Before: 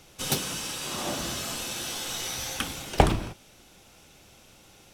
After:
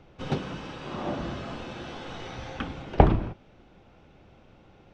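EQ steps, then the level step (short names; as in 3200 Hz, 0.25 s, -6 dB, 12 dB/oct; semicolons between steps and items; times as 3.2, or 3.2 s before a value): tape spacing loss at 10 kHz 44 dB; +4.0 dB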